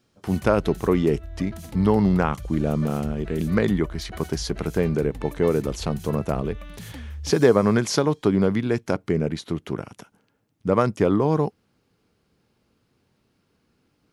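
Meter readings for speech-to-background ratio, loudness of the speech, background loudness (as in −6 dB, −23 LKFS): 15.5 dB, −23.5 LKFS, −39.0 LKFS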